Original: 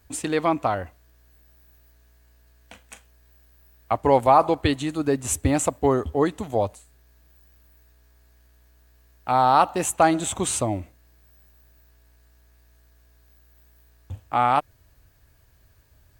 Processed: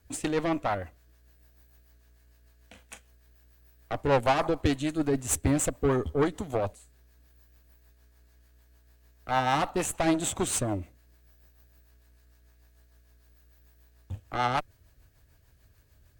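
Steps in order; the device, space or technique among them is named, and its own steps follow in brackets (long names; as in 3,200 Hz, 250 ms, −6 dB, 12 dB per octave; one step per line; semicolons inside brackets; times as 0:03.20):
overdriven rotary cabinet (tube saturation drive 19 dB, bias 0.65; rotating-speaker cabinet horn 6.7 Hz)
0:05.89–0:06.50: notch filter 2,600 Hz, Q 11
level +2.5 dB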